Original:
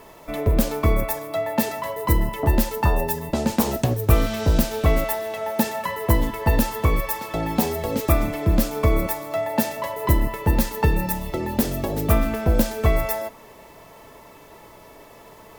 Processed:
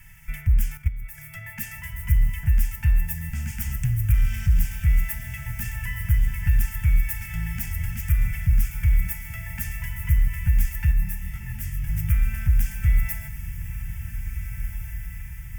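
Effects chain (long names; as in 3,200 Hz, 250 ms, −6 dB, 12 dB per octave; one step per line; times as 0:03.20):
in parallel at +2 dB: downward compressor 10 to 1, threshold −25 dBFS, peak gain reduction 15.5 dB
on the sum: soft clipping −12.5 dBFS, distortion −13 dB
0:00.77–0:01.18: output level in coarse steps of 16 dB
Chebyshev band-stop filter 140–1,900 Hz, order 2
low-shelf EQ 130 Hz +9 dB
phaser with its sweep stopped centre 1,100 Hz, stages 6
on a send: feedback delay with all-pass diffusion 1,746 ms, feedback 56%, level −10 dB
0:10.91–0:11.87: on the sum: micro pitch shift up and down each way 36 cents → 47 cents
level −4.5 dB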